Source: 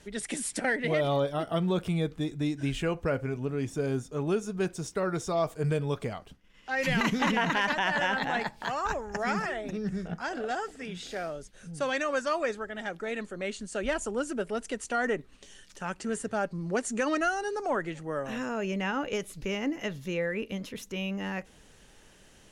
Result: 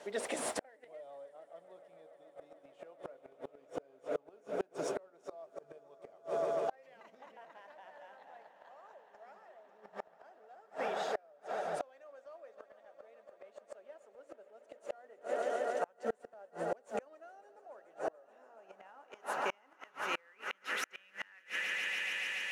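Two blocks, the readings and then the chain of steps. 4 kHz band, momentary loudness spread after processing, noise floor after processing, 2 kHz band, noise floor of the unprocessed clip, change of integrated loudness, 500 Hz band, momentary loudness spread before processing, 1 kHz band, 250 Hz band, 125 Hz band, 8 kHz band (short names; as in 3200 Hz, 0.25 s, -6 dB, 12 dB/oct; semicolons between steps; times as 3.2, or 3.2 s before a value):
-8.5 dB, 22 LU, -66 dBFS, -10.0 dB, -57 dBFS, -8.5 dB, -9.0 dB, 9 LU, -10.0 dB, -20.0 dB, -28.5 dB, -10.0 dB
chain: RIAA curve recording; notches 60/120/180/240/300/360/420/480/540 Hz; modulation noise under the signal 11 dB; on a send: swelling echo 0.143 s, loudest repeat 5, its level -16 dB; on the sum: band-pass sweep 610 Hz -> 2100 Hz, 18.24–22.01; flipped gate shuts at -34 dBFS, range -35 dB; in parallel at +2 dB: compressor, threshold -58 dBFS, peak gain reduction 16.5 dB; on the sum: gain +9 dB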